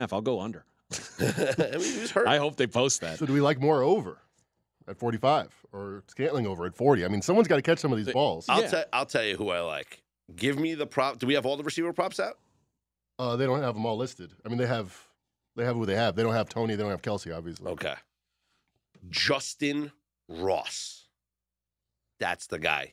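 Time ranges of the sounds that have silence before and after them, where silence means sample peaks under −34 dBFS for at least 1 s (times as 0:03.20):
0:19.14–0:20.91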